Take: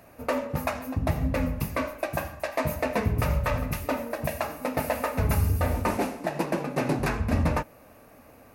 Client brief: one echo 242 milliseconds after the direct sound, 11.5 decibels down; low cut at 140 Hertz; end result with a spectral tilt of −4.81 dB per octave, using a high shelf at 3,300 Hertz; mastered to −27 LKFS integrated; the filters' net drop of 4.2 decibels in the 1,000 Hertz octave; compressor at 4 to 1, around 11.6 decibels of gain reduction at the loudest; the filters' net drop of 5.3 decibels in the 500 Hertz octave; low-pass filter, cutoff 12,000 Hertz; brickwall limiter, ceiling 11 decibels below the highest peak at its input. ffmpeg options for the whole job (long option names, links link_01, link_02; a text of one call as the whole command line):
ffmpeg -i in.wav -af "highpass=140,lowpass=12000,equalizer=frequency=500:width_type=o:gain=-5.5,equalizer=frequency=1000:width_type=o:gain=-4,highshelf=frequency=3300:gain=4,acompressor=threshold=-39dB:ratio=4,alimiter=level_in=9dB:limit=-24dB:level=0:latency=1,volume=-9dB,aecho=1:1:242:0.266,volume=16.5dB" out.wav